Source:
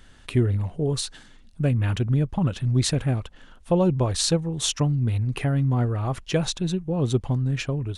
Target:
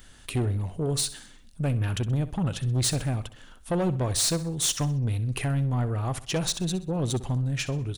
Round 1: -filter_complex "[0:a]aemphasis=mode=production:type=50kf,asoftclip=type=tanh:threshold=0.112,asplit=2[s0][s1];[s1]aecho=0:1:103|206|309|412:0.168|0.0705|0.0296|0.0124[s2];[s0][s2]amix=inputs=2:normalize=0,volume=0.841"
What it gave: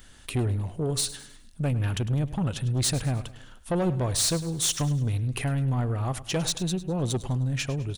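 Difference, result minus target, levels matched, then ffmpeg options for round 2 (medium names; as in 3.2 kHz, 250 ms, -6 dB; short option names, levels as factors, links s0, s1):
echo 39 ms late
-filter_complex "[0:a]aemphasis=mode=production:type=50kf,asoftclip=type=tanh:threshold=0.112,asplit=2[s0][s1];[s1]aecho=0:1:64|128|192|256:0.168|0.0705|0.0296|0.0124[s2];[s0][s2]amix=inputs=2:normalize=0,volume=0.841"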